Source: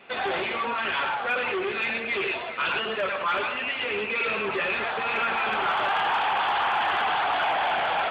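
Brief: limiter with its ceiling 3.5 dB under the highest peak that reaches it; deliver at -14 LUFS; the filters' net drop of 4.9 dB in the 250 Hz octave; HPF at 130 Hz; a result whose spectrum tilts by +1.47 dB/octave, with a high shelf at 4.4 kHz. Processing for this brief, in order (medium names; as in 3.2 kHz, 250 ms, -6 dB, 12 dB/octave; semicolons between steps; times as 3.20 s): high-pass 130 Hz; peaking EQ 250 Hz -7.5 dB; treble shelf 4.4 kHz -3.5 dB; trim +14 dB; peak limiter -6.5 dBFS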